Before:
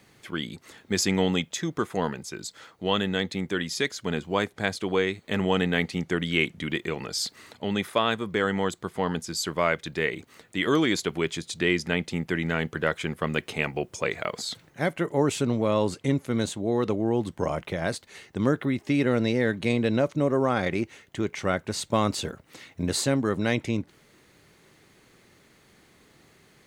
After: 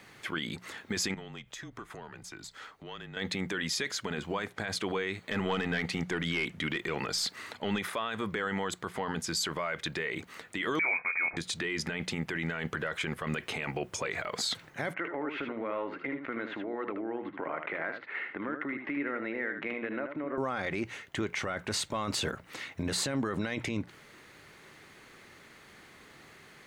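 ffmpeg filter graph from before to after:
ffmpeg -i in.wav -filter_complex "[0:a]asettb=1/sr,asplit=3[link_01][link_02][link_03];[link_01]atrim=end=1.144[link_04];[link_02]atrim=start=1.14:end=3.17,asetpts=PTS-STARTPTS,afade=type=in:duration=0.004:curve=qsin,afade=type=out:start_time=2.026:duration=0.004:curve=qsin,acompressor=threshold=-39dB:ratio=4:attack=3.2:release=140:knee=1:detection=peak,aeval=exprs='(tanh(11.2*val(0)+0.8)-tanh(0.8))/11.2':channel_layout=same,afreqshift=-31[link_05];[link_03]atrim=start=3.166[link_06];[link_04][link_05]acrossfade=duration=0.004:curve1=hsin:curve2=qsin[link_07];[link_07][link_06]acrossfade=duration=0.004:curve1=qsin:curve2=hsin,asettb=1/sr,asplit=3[link_08][link_09][link_10];[link_08]atrim=end=5.304[link_11];[link_09]atrim=start=5.3:end=7.79,asetpts=PTS-STARTPTS,afade=type=in:duration=0.004:curve=qsin,afade=type=out:start_time=2.486:duration=0.004:curve=qsin,highpass=46,aeval=exprs='(tanh(6.31*val(0)+0.2)-tanh(0.2))/6.31':channel_layout=same[link_12];[link_10]atrim=start=7.786[link_13];[link_11][link_12]acrossfade=duration=0.004:curve1=hsin:curve2=qsin[link_14];[link_14][link_13]acrossfade=duration=0.004:curve1=qsin:curve2=hsin,asettb=1/sr,asplit=3[link_15][link_16][link_17];[link_15]atrim=end=10.794[link_18];[link_16]atrim=start=10.79:end=11.37,asetpts=PTS-STARTPTS,afade=type=in:duration=0.004:curve=qsin,afade=type=out:start_time=0.576:duration=0.004:curve=qsin,highpass=44,asplit=2[link_19][link_20];[link_20]adelay=22,volume=-6.5dB[link_21];[link_19][link_21]amix=inputs=2:normalize=0,atrim=end_sample=25578,lowpass=frequency=2200:width_type=q:width=0.5098,lowpass=frequency=2200:width_type=q:width=0.6013,lowpass=frequency=2200:width_type=q:width=0.9,lowpass=frequency=2200:width_type=q:width=2.563,afreqshift=-2600[link_22];[link_17]atrim=start=11.366[link_23];[link_18][link_22]acrossfade=duration=0.004:curve1=hsin:curve2=qsin[link_24];[link_24][link_23]acrossfade=duration=0.004:curve1=qsin:curve2=hsin,asettb=1/sr,asplit=3[link_25][link_26][link_27];[link_25]atrim=end=14.944[link_28];[link_26]atrim=start=14.94:end=20.38,asetpts=PTS-STARTPTS,afade=type=in:duration=0.004:curve=qsin,afade=type=out:start_time=5.436:duration=0.004:curve=qsin,highpass=270,equalizer=frequency=300:width_type=q:width=4:gain=7,equalizer=frequency=1400:width_type=q:width=4:gain=6,equalizer=frequency=2000:width_type=q:width=4:gain=7,lowpass=frequency=2500:width=0.5412,lowpass=frequency=2500:width=1.3066,acompressor=threshold=-37dB:ratio=4:attack=3.2:release=140:knee=1:detection=peak,aecho=1:1:77:0.422,atrim=end_sample=239904[link_29];[link_27]atrim=start=20.376[link_30];[link_28][link_29]acrossfade=duration=0.004:curve1=hsin:curve2=qsin[link_31];[link_31][link_30]acrossfade=duration=0.004:curve1=qsin:curve2=hsin,equalizer=frequency=1600:width=0.54:gain=7.5,alimiter=limit=-22dB:level=0:latency=1:release=36,bandreject=frequency=60:width_type=h:width=6,bandreject=frequency=120:width_type=h:width=6,bandreject=frequency=180:width_type=h:width=6" out.wav

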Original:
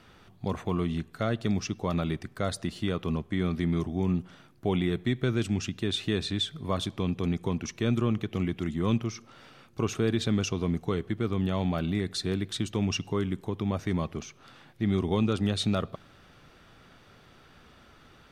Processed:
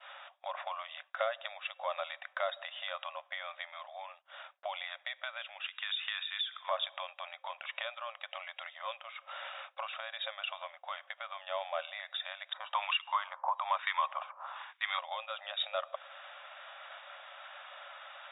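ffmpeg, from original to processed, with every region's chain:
ffmpeg -i in.wav -filter_complex "[0:a]asettb=1/sr,asplit=3[link_01][link_02][link_03];[link_01]atrim=end=5.674[link_04];[link_02]atrim=start=5.67:end=6.69,asetpts=PTS-STARTPTS,afade=type=in:duration=0.004:curve=qsin,afade=type=out:start_time=1.016:duration=0.004:curve=qsin,highpass=frequency=1100:width=0.5412,highpass=frequency=1100:width=1.3066,acompressor=threshold=-44dB:ratio=4:attack=3.2:release=140:knee=1:detection=peak[link_05];[link_03]atrim=start=6.686[link_06];[link_04][link_05]acrossfade=duration=0.004:curve1=hsin:curve2=qsin[link_07];[link_07][link_06]acrossfade=duration=0.004:curve1=qsin:curve2=hsin,asettb=1/sr,asplit=3[link_08][link_09][link_10];[link_08]atrim=end=12.534[link_11];[link_09]atrim=start=12.53:end=14.99,asetpts=PTS-STARTPTS,afade=type=in:duration=0.004:curve=qsin,afade=type=out:start_time=2.456:duration=0.004:curve=qsin,highpass=610,acrossover=split=1300[link_12][link_13];[link_12]aeval=exprs='val(0)*(1-1/2+1/2*cos(2*PI*1.1*n/s))':channel_layout=same[link_14];[link_13]aeval=exprs='val(0)*(1-1/2-1/2*cos(2*PI*1.1*n/s))':channel_layout=same[link_15];[link_14][link_15]amix=inputs=2:normalize=0,equalizer=frequency=1000:width_type=o:width=0.7:gain=13.5[link_16];[link_10]atrim=start=14.986[link_17];[link_11][link_16]acrossfade=duration=0.004:curve1=hsin:curve2=qsin[link_18];[link_18][link_17]acrossfade=duration=0.004:curve1=qsin:curve2=hsin,acompressor=threshold=-38dB:ratio=4,afftfilt=real='re*between(b*sr/4096,530,3800)':imag='im*between(b*sr/4096,530,3800)':win_size=4096:overlap=0.75,agate=range=-33dB:threshold=-57dB:ratio=3:detection=peak,volume=10.5dB" out.wav

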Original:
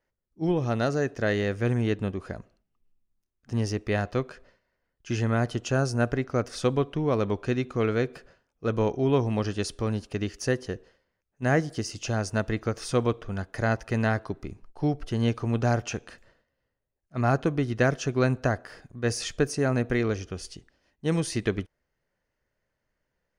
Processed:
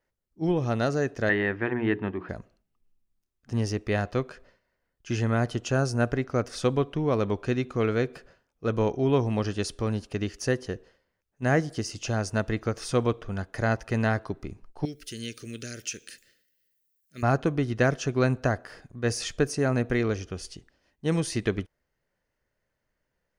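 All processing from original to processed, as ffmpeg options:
ffmpeg -i in.wav -filter_complex "[0:a]asettb=1/sr,asplit=3[link_01][link_02][link_03];[link_01]atrim=end=1.294[link_04];[link_02]atrim=start=1.29:end=2.29,asetpts=PTS-STARTPTS,afade=type=in:duration=0.004:curve=qsin,afade=type=out:start_time=0.996:duration=0.004:curve=qsin,highpass=110,equalizer=frequency=140:width_type=q:width=4:gain=-8,equalizer=frequency=340:width_type=q:width=4:gain=6,equalizer=frequency=520:width_type=q:width=4:gain=-6,equalizer=frequency=920:width_type=q:width=4:gain=8,equalizer=frequency=1800:width_type=q:width=4:gain=9,lowpass=frequency=3100:width=0.5412,lowpass=frequency=3100:width=1.3066,bandreject=frequency=60:width_type=h:width=6,bandreject=frequency=120:width_type=h:width=6,bandreject=frequency=180:width_type=h:width=6,bandreject=frequency=240:width_type=h:width=6,bandreject=frequency=300:width_type=h:width=6,bandreject=frequency=360:width_type=h:width=6,bandreject=frequency=420:width_type=h:width=6,bandreject=frequency=480:width_type=h:width=6[link_05];[link_03]atrim=start=2.286[link_06];[link_04][link_05]acrossfade=duration=0.004:curve1=hsin:curve2=qsin[link_07];[link_07][link_06]acrossfade=duration=0.004:curve1=qsin:curve2=hsin,asettb=1/sr,asplit=3[link_08][link_09][link_10];[link_08]atrim=end=14.854[link_11];[link_09]atrim=start=14.85:end=17.23,asetpts=PTS-STARTPTS,afade=type=in:duration=0.004:curve=qsin,afade=type=out:start_time=2.376:duration=0.004:curve=qsin,aemphasis=mode=production:type=riaa,acompressor=threshold=-38dB:ratio=1.5:attack=3.2:release=140:knee=1:detection=peak,asuperstop=centerf=880:order=4:qfactor=0.63[link_12];[link_10]atrim=start=17.226[link_13];[link_11][link_12]acrossfade=duration=0.004:curve1=hsin:curve2=qsin[link_14];[link_14][link_13]acrossfade=duration=0.004:curve1=qsin:curve2=hsin" out.wav

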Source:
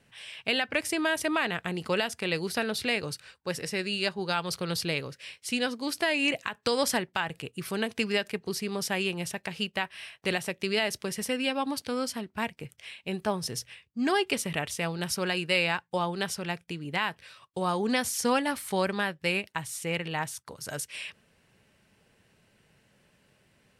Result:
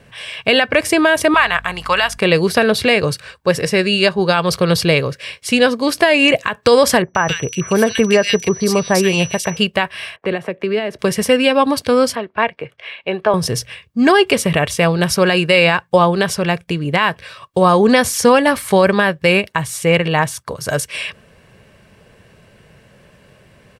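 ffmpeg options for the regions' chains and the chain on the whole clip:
ffmpeg -i in.wav -filter_complex "[0:a]asettb=1/sr,asplit=3[link_01][link_02][link_03];[link_01]atrim=end=1.344[link_04];[link_02]atrim=start=1.34:end=2.18,asetpts=PTS-STARTPTS,afade=type=in:duration=0.004:curve=qsin,afade=type=out:start_time=0.836:duration=0.004:curve=qsin,lowshelf=frequency=630:width_type=q:width=1.5:gain=-13.5,aeval=exprs='val(0)+0.00158*(sin(2*PI*50*n/s)+sin(2*PI*2*50*n/s)/2+sin(2*PI*3*50*n/s)/3+sin(2*PI*4*50*n/s)/4+sin(2*PI*5*50*n/s)/5)':channel_layout=same[link_05];[link_03]atrim=start=2.176[link_06];[link_04][link_05]acrossfade=duration=0.004:curve1=hsin:curve2=qsin[link_07];[link_07][link_06]acrossfade=duration=0.004:curve1=qsin:curve2=hsin,asettb=1/sr,asplit=3[link_08][link_09][link_10];[link_08]atrim=end=7.024[link_11];[link_09]atrim=start=7.02:end=9.57,asetpts=PTS-STARTPTS,afade=type=in:duration=0.004:curve=qsin,afade=type=out:start_time=2.546:duration=0.004:curve=qsin,aeval=exprs='val(0)+0.0112*sin(2*PI*5900*n/s)':channel_layout=same,acrossover=split=2000[link_12][link_13];[link_13]adelay=130[link_14];[link_12][link_14]amix=inputs=2:normalize=0,atrim=end_sample=112455[link_15];[link_10]atrim=start=9.566[link_16];[link_11][link_15]acrossfade=duration=0.004:curve1=hsin:curve2=qsin[link_17];[link_17][link_16]acrossfade=duration=0.004:curve1=qsin:curve2=hsin,asettb=1/sr,asplit=3[link_18][link_19][link_20];[link_18]atrim=end=10.164[link_21];[link_19]atrim=start=10.16:end=10.99,asetpts=PTS-STARTPTS,afade=type=in:duration=0.004:curve=qsin,afade=type=out:start_time=0.826:duration=0.004:curve=qsin,acrossover=split=240 2300:gain=0.2 1 0.0794[link_22][link_23][link_24];[link_22][link_23][link_24]amix=inputs=3:normalize=0,acrossover=split=350|3000[link_25][link_26][link_27];[link_26]acompressor=threshold=-41dB:ratio=4:attack=3.2:release=140:knee=2.83:detection=peak[link_28];[link_25][link_28][link_27]amix=inputs=3:normalize=0[link_29];[link_20]atrim=start=10.986[link_30];[link_21][link_29]acrossfade=duration=0.004:curve1=hsin:curve2=qsin[link_31];[link_31][link_30]acrossfade=duration=0.004:curve1=qsin:curve2=hsin,asettb=1/sr,asplit=3[link_32][link_33][link_34];[link_32]atrim=end=12.154[link_35];[link_33]atrim=start=12.15:end=13.34,asetpts=PTS-STARTPTS,afade=type=in:duration=0.004:curve=qsin,afade=type=out:start_time=1.186:duration=0.004:curve=qsin,highpass=63,acrossover=split=340 3600:gain=0.2 1 0.0708[link_36][link_37][link_38];[link_36][link_37][link_38]amix=inputs=3:normalize=0,bandreject=frequency=7300:width=28[link_39];[link_34]atrim=start=13.336[link_40];[link_35][link_39]acrossfade=duration=0.004:curve1=hsin:curve2=qsin[link_41];[link_41][link_40]acrossfade=duration=0.004:curve1=qsin:curve2=hsin,highshelf=frequency=2400:gain=-8,aecho=1:1:1.8:0.31,alimiter=level_in=19dB:limit=-1dB:release=50:level=0:latency=1,volume=-1dB" out.wav

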